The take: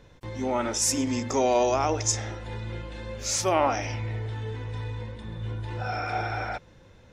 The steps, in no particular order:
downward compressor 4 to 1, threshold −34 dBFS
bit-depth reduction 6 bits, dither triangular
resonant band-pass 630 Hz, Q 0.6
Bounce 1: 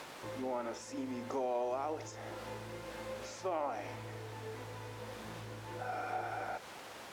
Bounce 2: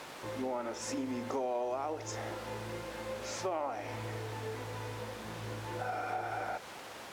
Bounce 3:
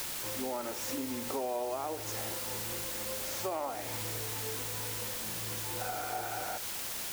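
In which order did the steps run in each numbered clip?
bit-depth reduction, then downward compressor, then resonant band-pass
bit-depth reduction, then resonant band-pass, then downward compressor
resonant band-pass, then bit-depth reduction, then downward compressor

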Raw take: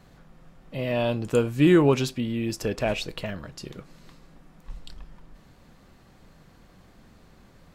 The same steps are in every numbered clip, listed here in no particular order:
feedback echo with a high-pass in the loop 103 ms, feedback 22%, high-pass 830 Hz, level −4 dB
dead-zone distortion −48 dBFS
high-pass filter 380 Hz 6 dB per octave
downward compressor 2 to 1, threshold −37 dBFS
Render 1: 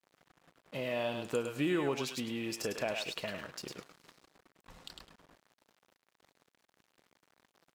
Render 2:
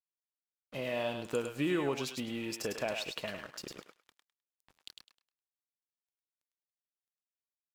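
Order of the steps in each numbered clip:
feedback echo with a high-pass in the loop, then dead-zone distortion, then high-pass filter, then downward compressor
high-pass filter, then dead-zone distortion, then downward compressor, then feedback echo with a high-pass in the loop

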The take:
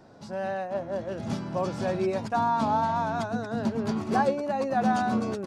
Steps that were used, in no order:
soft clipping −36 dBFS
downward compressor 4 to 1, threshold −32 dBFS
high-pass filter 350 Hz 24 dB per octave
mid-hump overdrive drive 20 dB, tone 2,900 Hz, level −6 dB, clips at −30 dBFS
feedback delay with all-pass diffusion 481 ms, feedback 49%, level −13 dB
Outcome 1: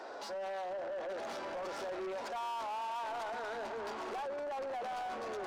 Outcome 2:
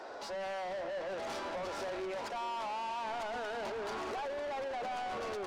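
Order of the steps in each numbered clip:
downward compressor, then feedback delay with all-pass diffusion, then mid-hump overdrive, then high-pass filter, then soft clipping
high-pass filter, then downward compressor, then mid-hump overdrive, then soft clipping, then feedback delay with all-pass diffusion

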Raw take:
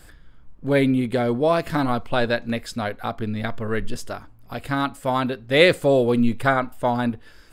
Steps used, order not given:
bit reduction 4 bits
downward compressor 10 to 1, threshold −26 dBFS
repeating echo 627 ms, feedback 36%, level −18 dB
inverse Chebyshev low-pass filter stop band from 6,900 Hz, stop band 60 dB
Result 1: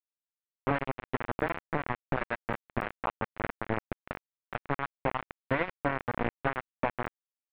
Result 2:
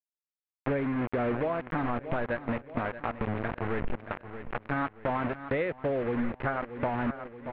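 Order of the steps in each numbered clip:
repeating echo, then downward compressor, then bit reduction, then inverse Chebyshev low-pass filter
bit reduction, then repeating echo, then downward compressor, then inverse Chebyshev low-pass filter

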